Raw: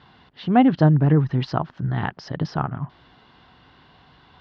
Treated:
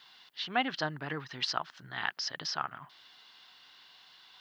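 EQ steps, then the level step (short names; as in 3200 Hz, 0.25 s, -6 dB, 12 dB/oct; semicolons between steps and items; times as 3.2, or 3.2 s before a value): differentiator; high shelf 3900 Hz +6.5 dB; dynamic EQ 1500 Hz, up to +4 dB, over -56 dBFS, Q 1.2; +6.5 dB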